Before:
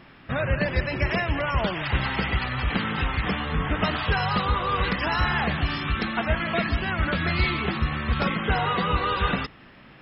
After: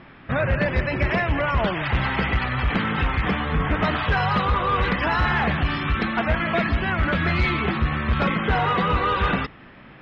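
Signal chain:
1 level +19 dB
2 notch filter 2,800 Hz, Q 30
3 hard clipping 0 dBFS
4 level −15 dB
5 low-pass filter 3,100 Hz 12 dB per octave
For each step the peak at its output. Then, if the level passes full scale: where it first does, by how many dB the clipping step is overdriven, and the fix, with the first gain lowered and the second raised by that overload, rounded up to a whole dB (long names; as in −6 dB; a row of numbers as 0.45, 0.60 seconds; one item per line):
+9.0, +9.0, 0.0, −15.0, −14.5 dBFS
step 1, 9.0 dB
step 1 +10 dB, step 4 −6 dB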